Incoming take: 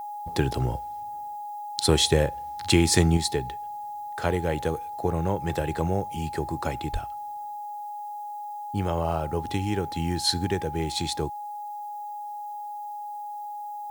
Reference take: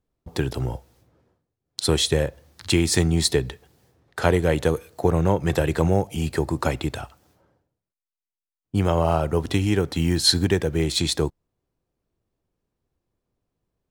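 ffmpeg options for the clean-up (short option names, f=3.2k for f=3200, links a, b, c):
-filter_complex "[0:a]bandreject=f=830:w=30,asplit=3[a][b][c];[a]afade=t=out:st=6.92:d=0.02[d];[b]highpass=f=140:w=0.5412,highpass=f=140:w=1.3066,afade=t=in:st=6.92:d=0.02,afade=t=out:st=7.04:d=0.02[e];[c]afade=t=in:st=7.04:d=0.02[f];[d][e][f]amix=inputs=3:normalize=0,agate=range=-21dB:threshold=-28dB,asetnsamples=n=441:p=0,asendcmd='3.17 volume volume 6.5dB',volume=0dB"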